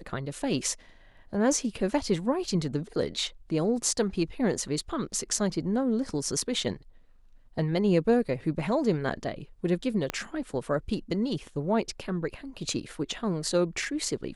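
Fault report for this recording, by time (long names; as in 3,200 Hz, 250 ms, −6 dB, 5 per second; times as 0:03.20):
0:10.10: click −14 dBFS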